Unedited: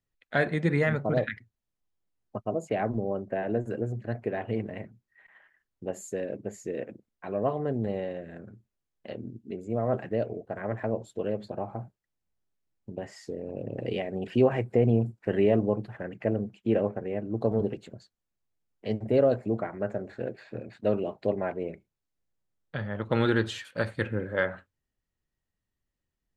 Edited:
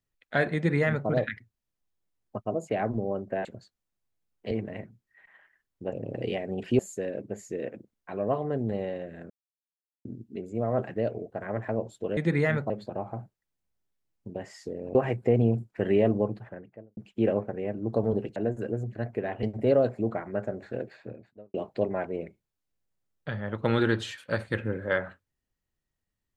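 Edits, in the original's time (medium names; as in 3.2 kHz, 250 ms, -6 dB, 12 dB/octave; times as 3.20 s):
0.55–1.08 s: copy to 11.32 s
3.45–4.52 s: swap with 17.84–18.90 s
8.45–9.20 s: mute
13.57–14.43 s: move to 5.94 s
15.67–16.45 s: studio fade out
20.30–21.01 s: studio fade out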